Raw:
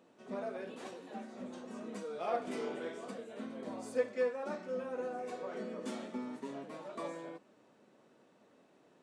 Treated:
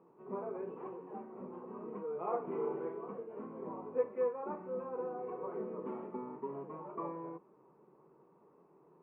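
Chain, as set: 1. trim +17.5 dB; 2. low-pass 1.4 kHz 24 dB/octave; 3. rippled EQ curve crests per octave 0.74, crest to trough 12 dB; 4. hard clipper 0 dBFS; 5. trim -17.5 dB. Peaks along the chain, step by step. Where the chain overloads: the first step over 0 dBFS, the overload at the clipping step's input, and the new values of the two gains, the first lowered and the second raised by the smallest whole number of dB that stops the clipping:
-3.5 dBFS, -3.5 dBFS, -4.0 dBFS, -4.0 dBFS, -21.5 dBFS; nothing clips

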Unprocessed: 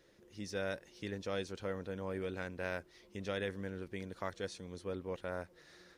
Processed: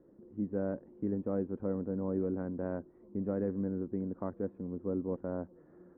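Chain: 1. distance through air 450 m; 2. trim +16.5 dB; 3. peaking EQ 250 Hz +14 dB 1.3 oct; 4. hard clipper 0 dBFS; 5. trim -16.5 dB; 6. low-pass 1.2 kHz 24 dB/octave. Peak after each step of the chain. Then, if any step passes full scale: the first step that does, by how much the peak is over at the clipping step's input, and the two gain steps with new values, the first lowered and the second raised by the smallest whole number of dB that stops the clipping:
-26.0 dBFS, -9.5 dBFS, -4.0 dBFS, -4.0 dBFS, -20.5 dBFS, -21.0 dBFS; nothing clips

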